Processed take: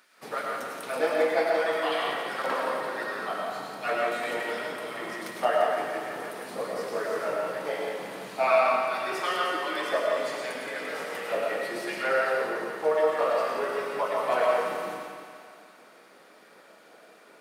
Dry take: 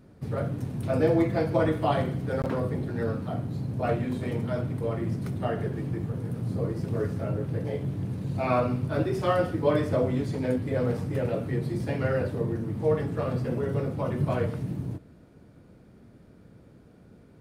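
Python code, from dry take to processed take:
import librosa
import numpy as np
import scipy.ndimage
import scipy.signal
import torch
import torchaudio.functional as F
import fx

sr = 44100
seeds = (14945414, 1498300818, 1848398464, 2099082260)

p1 = scipy.signal.sosfilt(scipy.signal.butter(4, 150.0, 'highpass', fs=sr, output='sos'), x)
p2 = fx.rider(p1, sr, range_db=10, speed_s=0.5)
p3 = p1 + (p2 * librosa.db_to_amplitude(-0.5))
p4 = fx.filter_lfo_highpass(p3, sr, shape='sine', hz=2.7, low_hz=680.0, high_hz=2200.0, q=0.97)
p5 = fx.echo_thinned(p4, sr, ms=172, feedback_pct=65, hz=420.0, wet_db=-7.5)
y = fx.rev_freeverb(p5, sr, rt60_s=1.4, hf_ratio=0.35, predelay_ms=65, drr_db=-1.0)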